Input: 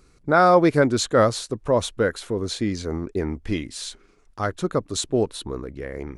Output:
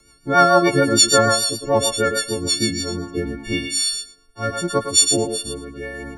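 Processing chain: partials quantised in pitch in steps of 4 st; thinning echo 113 ms, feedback 16%, high-pass 320 Hz, level -4.5 dB; rotary cabinet horn 6.7 Hz, later 0.8 Hz, at 2.52 s; trim +2.5 dB

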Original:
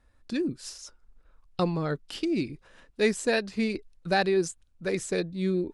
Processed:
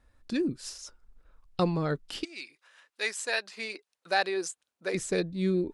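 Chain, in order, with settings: 2.23–4.93 s: high-pass 1.4 kHz -> 420 Hz 12 dB/octave

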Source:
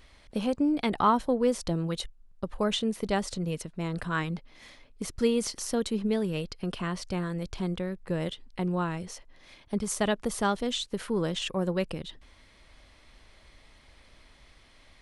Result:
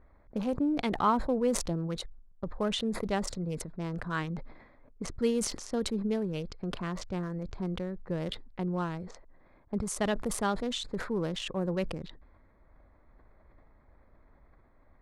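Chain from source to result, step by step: local Wiener filter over 15 samples; level-controlled noise filter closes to 1.6 kHz, open at -28 dBFS; decay stretcher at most 73 dB/s; trim -3 dB

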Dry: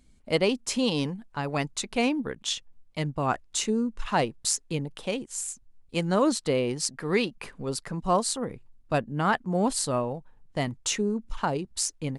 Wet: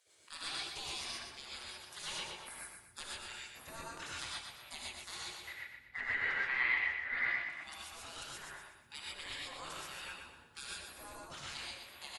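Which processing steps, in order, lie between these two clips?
peak limiter -19.5 dBFS, peak gain reduction 10.5 dB; rotary cabinet horn 6.3 Hz; spectral gate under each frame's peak -30 dB weak; 5.47–7.50 s: resonant low-pass 2 kHz, resonance Q 15; feedback delay 121 ms, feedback 41%, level -6 dB; gated-style reverb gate 160 ms rising, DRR -4 dB; trim +5 dB

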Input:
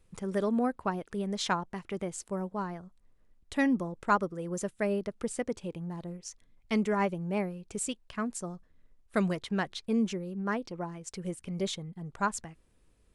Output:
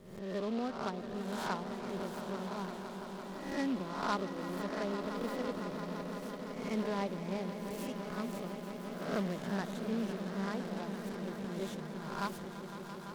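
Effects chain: reverse spectral sustain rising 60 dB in 0.77 s; treble shelf 2.3 kHz -11 dB; echo with a slow build-up 169 ms, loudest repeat 5, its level -12 dB; delay time shaken by noise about 2.8 kHz, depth 0.038 ms; trim -8 dB

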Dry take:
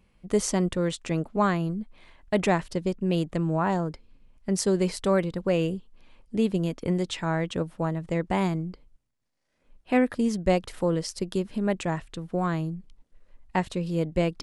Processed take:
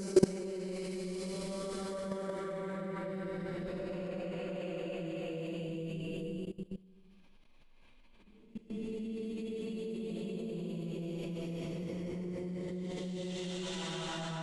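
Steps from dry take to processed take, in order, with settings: Paulstretch 5.7×, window 0.50 s, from 4.70 s; level held to a coarse grid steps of 20 dB; trim +1 dB

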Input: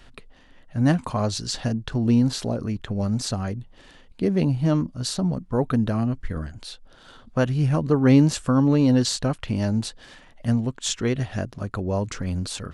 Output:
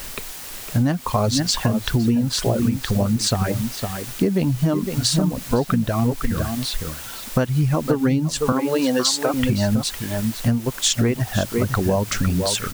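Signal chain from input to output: echo from a far wall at 87 m, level -7 dB; reverb removal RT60 1.6 s; in parallel at -7 dB: word length cut 6-bit, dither triangular; 8.52–9.34 s: on the sum: high-pass 410 Hz 12 dB/octave; compression 16:1, threshold -23 dBFS, peak gain reduction 16.5 dB; trim +8 dB

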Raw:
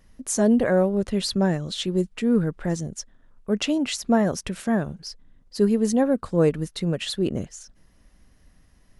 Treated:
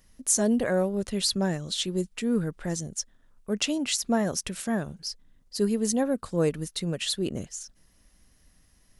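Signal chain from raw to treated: treble shelf 3.5 kHz +11.5 dB; trim -5.5 dB

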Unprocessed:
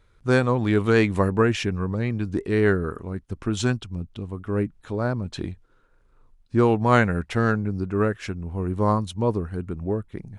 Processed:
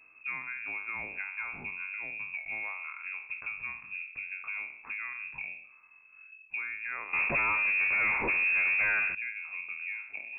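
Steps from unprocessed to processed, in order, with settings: spectral sustain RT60 0.43 s; compression 6:1, threshold -34 dBFS, peak gain reduction 21 dB; 7.13–9.15 s: waveshaping leveller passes 5; frequency inversion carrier 2.6 kHz; trim -2 dB

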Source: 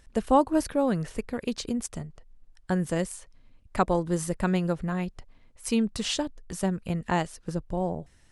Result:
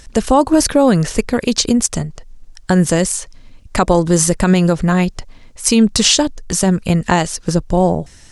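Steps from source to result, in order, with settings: peaking EQ 6.1 kHz +8.5 dB 1.3 oct; loudness maximiser +16.5 dB; trim -1 dB

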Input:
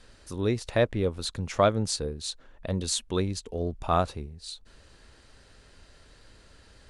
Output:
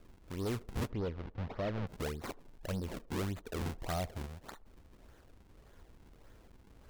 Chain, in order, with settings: local Wiener filter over 15 samples; de-esser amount 90%; low-pass that closes with the level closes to 790 Hz, closed at -22 dBFS; treble shelf 2.6 kHz +9.5 dB; decimation with a swept rate 42×, swing 160% 1.7 Hz; saturation -28.5 dBFS, distortion -6 dB; 0.90–1.87 s: distance through air 250 m; band-passed feedback delay 81 ms, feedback 53%, band-pass 510 Hz, level -21 dB; trim -3 dB

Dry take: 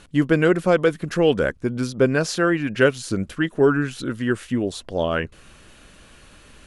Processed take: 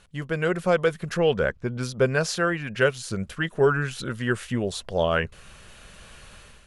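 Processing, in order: peaking EQ 290 Hz -13.5 dB 0.47 oct; level rider gain up to 10 dB; 1.17–1.81 s: distance through air 88 m; trim -7.5 dB

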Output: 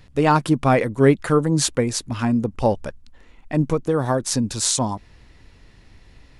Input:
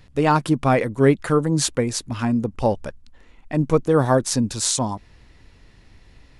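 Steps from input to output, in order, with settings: 3.62–4.63 s: compression, threshold -17 dBFS, peak gain reduction 6.5 dB; trim +1 dB

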